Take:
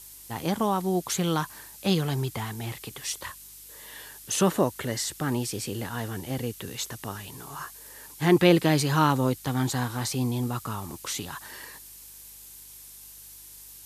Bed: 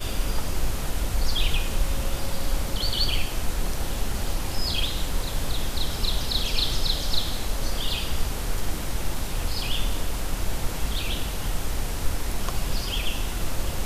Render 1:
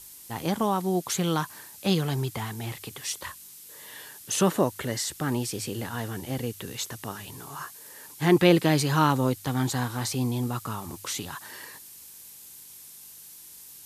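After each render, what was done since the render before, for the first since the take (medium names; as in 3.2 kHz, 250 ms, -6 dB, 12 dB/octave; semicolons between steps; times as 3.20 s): de-hum 50 Hz, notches 2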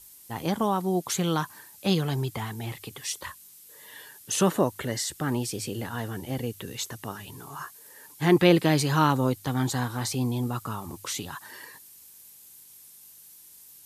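noise reduction 6 dB, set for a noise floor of -47 dBFS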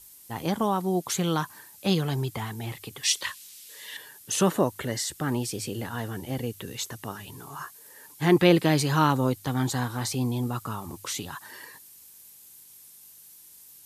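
3.03–3.97 s: frequency weighting D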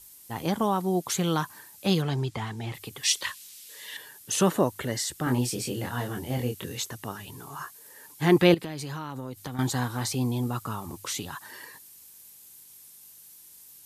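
2.02–2.74 s: low-pass 6.7 kHz; 5.24–6.82 s: doubling 24 ms -3 dB; 8.54–9.59 s: compression 10:1, threshold -31 dBFS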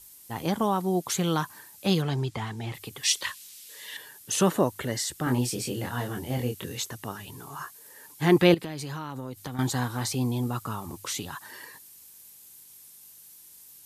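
no audible change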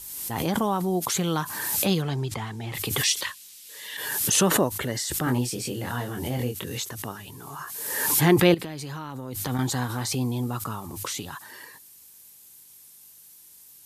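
swell ahead of each attack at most 36 dB/s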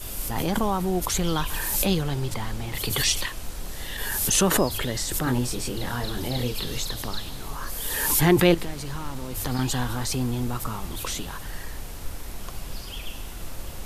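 add bed -8.5 dB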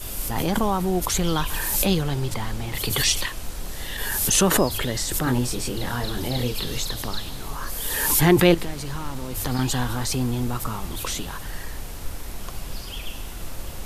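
trim +2 dB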